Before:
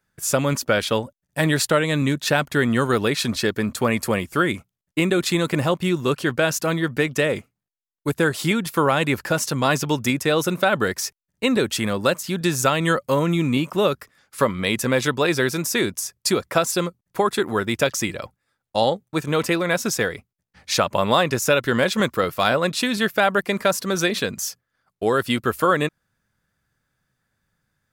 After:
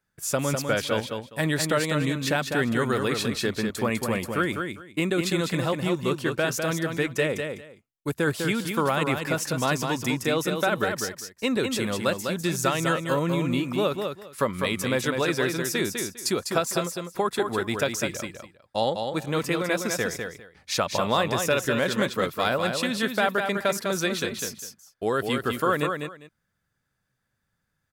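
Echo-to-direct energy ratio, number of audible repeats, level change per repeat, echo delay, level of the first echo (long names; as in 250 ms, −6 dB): −5.5 dB, 2, −14.5 dB, 201 ms, −5.5 dB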